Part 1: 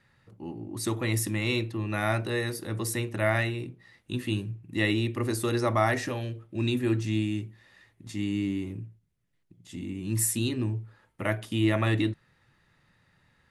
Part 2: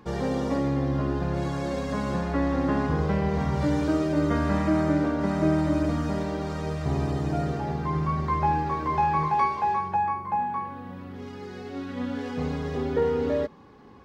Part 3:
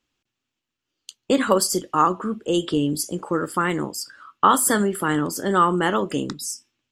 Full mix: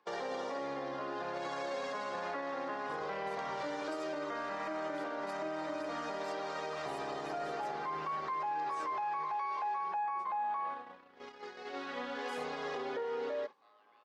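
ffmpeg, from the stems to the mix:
-filter_complex "[0:a]alimiter=limit=-20dB:level=0:latency=1:release=39,aeval=exprs='val(0)*sin(2*PI*940*n/s)':c=same,adelay=2100,volume=-17.5dB[a];[1:a]volume=2dB[b];[2:a]acompressor=threshold=-28dB:ratio=6,adelay=2300,volume=-20dB[c];[a][b]amix=inputs=2:normalize=0,highpass=160,acompressor=threshold=-28dB:ratio=3,volume=0dB[d];[c][d]amix=inputs=2:normalize=0,agate=range=-17dB:threshold=-36dB:ratio=16:detection=peak,acrossover=split=450 6900:gain=0.0708 1 0.126[e][f][g];[e][f][g]amix=inputs=3:normalize=0,alimiter=level_in=6dB:limit=-24dB:level=0:latency=1:release=44,volume=-6dB"

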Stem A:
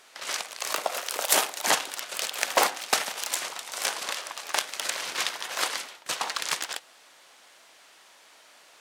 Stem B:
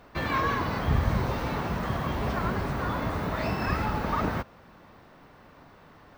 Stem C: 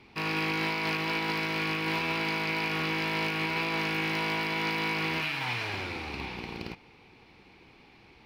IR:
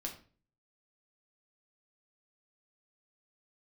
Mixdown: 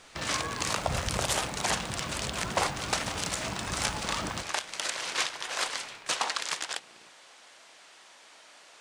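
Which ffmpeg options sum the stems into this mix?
-filter_complex "[0:a]lowpass=f=9.7k:w=0.5412,lowpass=f=9.7k:w=1.3066,volume=1dB[a];[1:a]volume=-11dB,asplit=2[b][c];[c]volume=-7.5dB[d];[2:a]highpass=f=460:p=1,adelay=350,volume=-18dB[e];[a][e]amix=inputs=2:normalize=0,alimiter=limit=-14dB:level=0:latency=1:release=303,volume=0dB[f];[3:a]atrim=start_sample=2205[g];[d][g]afir=irnorm=-1:irlink=0[h];[b][f][h]amix=inputs=3:normalize=0"

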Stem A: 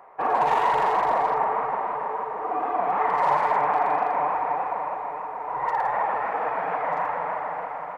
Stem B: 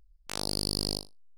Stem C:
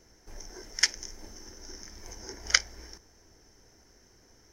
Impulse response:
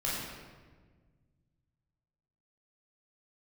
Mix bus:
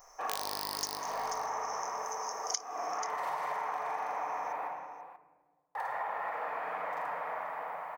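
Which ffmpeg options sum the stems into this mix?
-filter_complex "[0:a]volume=-14dB,asplit=3[a][b][c];[a]atrim=end=4.68,asetpts=PTS-STARTPTS,afade=t=out:st=4.676:d=0.004:c=hsin[d];[b]atrim=start=4.68:end=5.75,asetpts=PTS-STARTPTS,volume=0[e];[c]atrim=start=5.75,asetpts=PTS-STARTPTS,afade=t=in:d=0.004:c=hsin[f];[d][e][f]concat=n=3:v=0:a=1,asplit=3[g][h][i];[h]volume=-3.5dB[j];[i]volume=-10.5dB[k];[1:a]adynamicsmooth=sensitivity=2:basefreq=1.1k,volume=2dB,asplit=3[l][m][n];[m]volume=-17.5dB[o];[n]volume=-22dB[p];[2:a]equalizer=f=6.3k:w=1.8:g=12.5,volume=-18dB,asplit=2[q][r];[r]volume=-16.5dB[s];[3:a]atrim=start_sample=2205[t];[j][o]amix=inputs=2:normalize=0[u];[u][t]afir=irnorm=-1:irlink=0[v];[k][p][s]amix=inputs=3:normalize=0,aecho=0:1:485:1[w];[g][l][q][v][w]amix=inputs=5:normalize=0,aemphasis=mode=production:type=riaa,acompressor=threshold=-32dB:ratio=6"

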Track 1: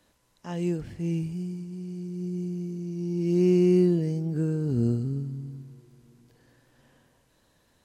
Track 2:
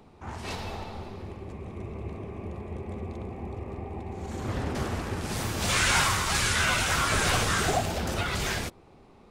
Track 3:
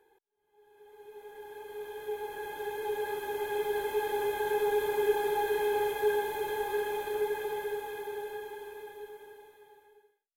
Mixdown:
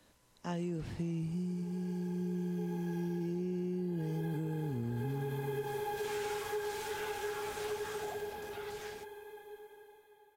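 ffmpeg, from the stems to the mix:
-filter_complex "[0:a]volume=0.5dB[a];[1:a]lowshelf=f=120:g=-10.5,bandreject=f=94.77:t=h:w=4,bandreject=f=189.54:t=h:w=4,bandreject=f=284.31:t=h:w=4,bandreject=f=379.08:t=h:w=4,bandreject=f=473.85:t=h:w=4,bandreject=f=568.62:t=h:w=4,bandreject=f=663.39:t=h:w=4,bandreject=f=758.16:t=h:w=4,bandreject=f=852.93:t=h:w=4,bandreject=f=947.7:t=h:w=4,bandreject=f=1.04247k:t=h:w=4,bandreject=f=1.13724k:t=h:w=4,bandreject=f=1.23201k:t=h:w=4,bandreject=f=1.32678k:t=h:w=4,bandreject=f=1.42155k:t=h:w=4,bandreject=f=1.51632k:t=h:w=4,bandreject=f=1.61109k:t=h:w=4,bandreject=f=1.70586k:t=h:w=4,bandreject=f=1.80063k:t=h:w=4,bandreject=f=1.8954k:t=h:w=4,bandreject=f=1.99017k:t=h:w=4,bandreject=f=2.08494k:t=h:w=4,bandreject=f=2.17971k:t=h:w=4,bandreject=f=2.27448k:t=h:w=4,bandreject=f=2.36925k:t=h:w=4,bandreject=f=2.46402k:t=h:w=4,bandreject=f=2.55879k:t=h:w=4,bandreject=f=2.65356k:t=h:w=4,bandreject=f=2.74833k:t=h:w=4,bandreject=f=2.8431k:t=h:w=4,bandreject=f=2.93787k:t=h:w=4,bandreject=f=3.03264k:t=h:w=4,bandreject=f=3.12741k:t=h:w=4,adelay=350,volume=-19dB[b];[2:a]adelay=500,volume=-5.5dB[c];[a][c]amix=inputs=2:normalize=0,acrossover=split=210[d][e];[e]acompressor=threshold=-27dB:ratio=3[f];[d][f]amix=inputs=2:normalize=0,alimiter=limit=-23.5dB:level=0:latency=1,volume=0dB[g];[b][g]amix=inputs=2:normalize=0,acompressor=threshold=-34dB:ratio=4"

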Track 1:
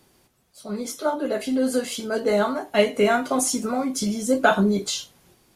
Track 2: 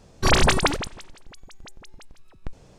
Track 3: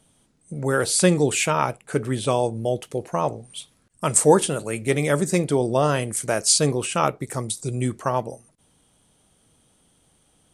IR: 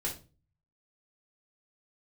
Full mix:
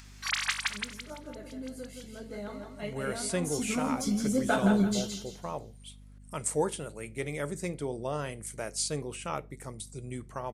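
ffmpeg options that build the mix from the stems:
-filter_complex "[0:a]bass=f=250:g=10,treble=f=4k:g=3,adelay=50,volume=-11dB,afade=t=in:st=3.39:d=0.36:silence=0.281838,asplit=2[a][b];[b]volume=-5.5dB[c];[1:a]highpass=f=1.3k:w=0.5412,highpass=f=1.3k:w=1.3066,volume=-9dB,asplit=2[d][e];[e]volume=-6.5dB[f];[2:a]adelay=2300,volume=-14.5dB,asplit=2[g][h];[h]volume=-21dB[i];[3:a]atrim=start_sample=2205[j];[i][j]afir=irnorm=-1:irlink=0[k];[c][f]amix=inputs=2:normalize=0,aecho=0:1:167|334|501|668|835:1|0.33|0.109|0.0359|0.0119[l];[a][d][g][k][l]amix=inputs=5:normalize=0,equalizer=f=2.1k:t=o:w=0.28:g=4.5,acompressor=mode=upward:threshold=-44dB:ratio=2.5,aeval=exprs='val(0)+0.00316*(sin(2*PI*50*n/s)+sin(2*PI*2*50*n/s)/2+sin(2*PI*3*50*n/s)/3+sin(2*PI*4*50*n/s)/4+sin(2*PI*5*50*n/s)/5)':c=same"

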